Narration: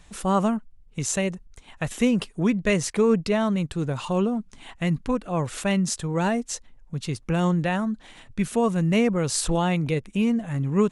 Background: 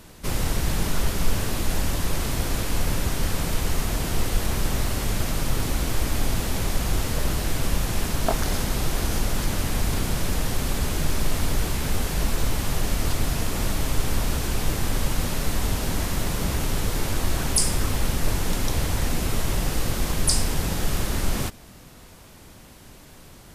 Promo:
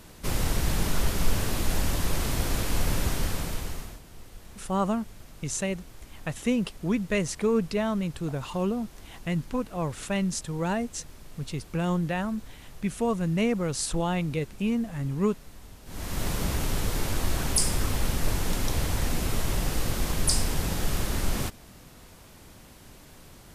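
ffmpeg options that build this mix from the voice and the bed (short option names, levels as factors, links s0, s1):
-filter_complex "[0:a]adelay=4450,volume=0.596[s0];[1:a]volume=7.94,afade=t=out:st=3.08:d=0.93:silence=0.0891251,afade=t=in:st=15.85:d=0.42:silence=0.1[s1];[s0][s1]amix=inputs=2:normalize=0"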